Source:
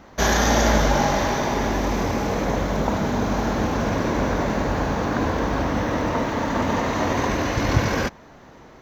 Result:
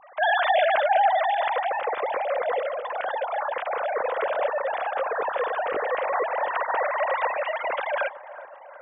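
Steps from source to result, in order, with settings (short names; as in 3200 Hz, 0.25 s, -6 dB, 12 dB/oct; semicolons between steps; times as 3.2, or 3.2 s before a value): sine-wave speech; 2.6–3.17 negative-ratio compressor -25 dBFS, ratio -0.5; analogue delay 0.373 s, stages 4096, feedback 58%, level -16 dB; gain -3.5 dB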